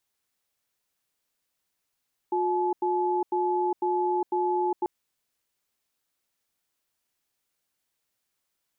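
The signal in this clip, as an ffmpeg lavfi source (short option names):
-f lavfi -i "aevalsrc='0.0531*(sin(2*PI*359*t)+sin(2*PI*858*t))*clip(min(mod(t,0.5),0.41-mod(t,0.5))/0.005,0,1)':d=2.54:s=44100"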